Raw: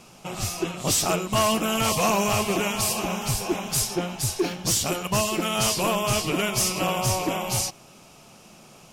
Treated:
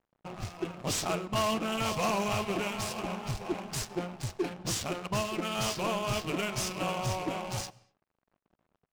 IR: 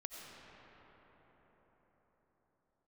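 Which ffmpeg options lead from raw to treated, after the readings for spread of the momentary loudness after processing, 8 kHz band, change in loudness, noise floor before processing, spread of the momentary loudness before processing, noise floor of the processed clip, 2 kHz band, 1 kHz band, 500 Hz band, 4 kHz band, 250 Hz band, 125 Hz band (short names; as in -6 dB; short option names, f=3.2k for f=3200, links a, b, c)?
8 LU, -13.0 dB, -8.5 dB, -50 dBFS, 5 LU, under -85 dBFS, -7.5 dB, -7.0 dB, -7.0 dB, -9.0 dB, -7.5 dB, -7.0 dB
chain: -filter_complex "[0:a]adynamicsmooth=sensitivity=6:basefreq=530,aeval=exprs='sgn(val(0))*max(abs(val(0))-0.00398,0)':c=same,asplit=2[a][b];[1:a]atrim=start_sample=2205,afade=t=out:st=0.3:d=0.01,atrim=end_sample=13671[c];[b][c]afir=irnorm=-1:irlink=0,volume=-14.5dB[d];[a][d]amix=inputs=2:normalize=0,volume=-7.5dB"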